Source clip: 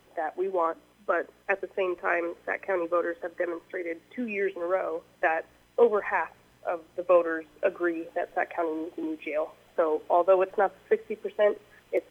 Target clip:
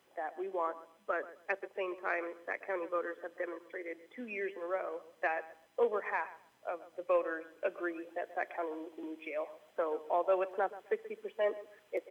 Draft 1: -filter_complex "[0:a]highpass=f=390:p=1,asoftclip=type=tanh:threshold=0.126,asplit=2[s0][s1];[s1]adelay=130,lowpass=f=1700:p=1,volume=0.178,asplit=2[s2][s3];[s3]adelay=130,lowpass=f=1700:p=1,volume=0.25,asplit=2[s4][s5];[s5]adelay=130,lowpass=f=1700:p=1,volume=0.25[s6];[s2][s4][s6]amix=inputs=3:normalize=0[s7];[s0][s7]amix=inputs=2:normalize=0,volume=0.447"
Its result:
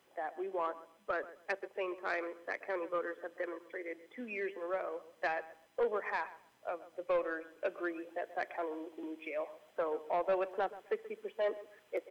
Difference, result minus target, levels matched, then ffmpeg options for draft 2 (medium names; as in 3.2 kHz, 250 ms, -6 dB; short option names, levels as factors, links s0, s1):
saturation: distortion +15 dB
-filter_complex "[0:a]highpass=f=390:p=1,asoftclip=type=tanh:threshold=0.376,asplit=2[s0][s1];[s1]adelay=130,lowpass=f=1700:p=1,volume=0.178,asplit=2[s2][s3];[s3]adelay=130,lowpass=f=1700:p=1,volume=0.25,asplit=2[s4][s5];[s5]adelay=130,lowpass=f=1700:p=1,volume=0.25[s6];[s2][s4][s6]amix=inputs=3:normalize=0[s7];[s0][s7]amix=inputs=2:normalize=0,volume=0.447"